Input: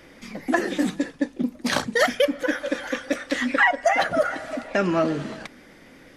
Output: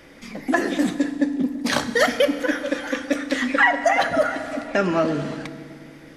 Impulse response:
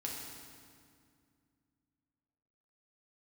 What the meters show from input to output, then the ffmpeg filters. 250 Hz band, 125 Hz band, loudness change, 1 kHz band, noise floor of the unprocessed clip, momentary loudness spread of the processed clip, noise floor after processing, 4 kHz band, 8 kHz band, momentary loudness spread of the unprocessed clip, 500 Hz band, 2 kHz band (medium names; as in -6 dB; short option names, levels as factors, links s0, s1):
+3.0 dB, +1.5 dB, +2.0 dB, +2.0 dB, -50 dBFS, 14 LU, -45 dBFS, +1.5 dB, +1.5 dB, 12 LU, +1.5 dB, +1.5 dB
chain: -filter_complex "[0:a]asplit=2[s0][s1];[1:a]atrim=start_sample=2205[s2];[s1][s2]afir=irnorm=-1:irlink=0,volume=0.473[s3];[s0][s3]amix=inputs=2:normalize=0,volume=0.891"